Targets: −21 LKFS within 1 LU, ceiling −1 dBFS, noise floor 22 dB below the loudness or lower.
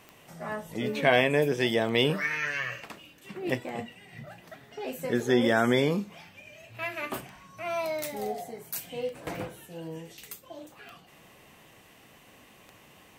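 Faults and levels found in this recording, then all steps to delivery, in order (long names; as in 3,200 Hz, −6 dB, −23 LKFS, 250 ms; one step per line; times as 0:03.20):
number of clicks 8; integrated loudness −29.0 LKFS; sample peak −8.0 dBFS; target loudness −21.0 LKFS
→ click removal
level +8 dB
brickwall limiter −1 dBFS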